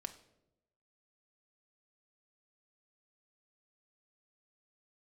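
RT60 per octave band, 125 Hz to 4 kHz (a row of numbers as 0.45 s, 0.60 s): 1.1 s, 1.1 s, 1.1 s, 0.70 s, 0.60 s, 0.55 s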